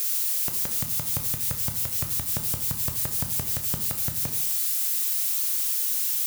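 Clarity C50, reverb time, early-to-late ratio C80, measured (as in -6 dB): 8.0 dB, 0.75 s, 10.5 dB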